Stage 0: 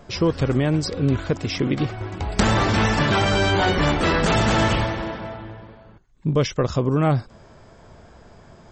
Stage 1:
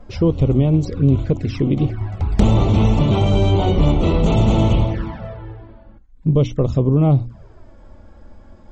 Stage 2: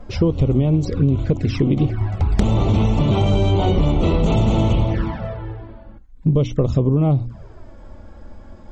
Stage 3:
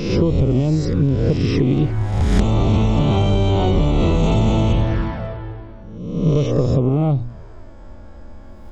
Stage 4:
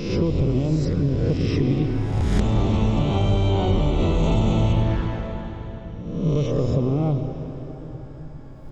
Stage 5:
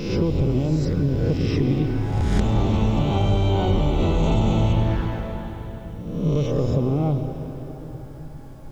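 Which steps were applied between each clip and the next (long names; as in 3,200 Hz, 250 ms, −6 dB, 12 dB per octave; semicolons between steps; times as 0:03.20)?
flanger swept by the level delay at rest 4.2 ms, full sweep at −18.5 dBFS; spectral tilt −2.5 dB per octave; mains-hum notches 60/120/180/240/300 Hz
downward compressor, threshold −16 dBFS, peak gain reduction 8.5 dB; level +3.5 dB
peak hold with a rise ahead of every peak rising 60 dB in 1.03 s; level −1.5 dB
convolution reverb RT60 3.9 s, pre-delay 96 ms, DRR 6.5 dB; level −5 dB
hollow resonant body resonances 820/1,500 Hz, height 8 dB, ringing for 95 ms; bit-depth reduction 10 bits, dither none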